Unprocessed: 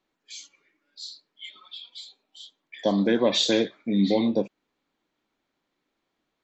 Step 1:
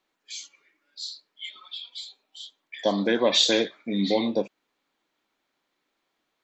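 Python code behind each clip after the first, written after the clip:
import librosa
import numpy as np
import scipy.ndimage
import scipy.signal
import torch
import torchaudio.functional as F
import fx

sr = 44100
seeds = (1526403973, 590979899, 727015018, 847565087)

y = fx.low_shelf(x, sr, hz=350.0, db=-10.5)
y = y * 10.0 ** (3.5 / 20.0)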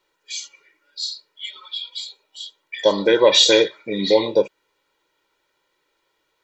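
y = x + 0.82 * np.pad(x, (int(2.1 * sr / 1000.0), 0))[:len(x)]
y = y * 10.0 ** (5.0 / 20.0)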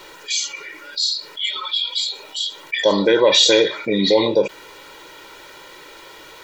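y = fx.env_flatten(x, sr, amount_pct=50)
y = y * 10.0 ** (-1.5 / 20.0)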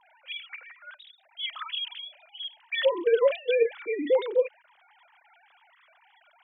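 y = fx.sine_speech(x, sr)
y = y * 10.0 ** (-9.0 / 20.0)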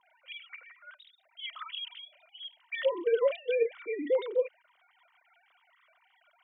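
y = fx.notch_comb(x, sr, f0_hz=850.0)
y = y * 10.0 ** (-4.5 / 20.0)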